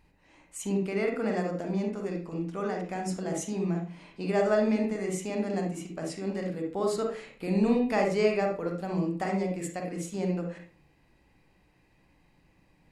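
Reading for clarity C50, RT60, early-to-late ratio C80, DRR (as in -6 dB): 3.5 dB, 0.45 s, 10.5 dB, 1.0 dB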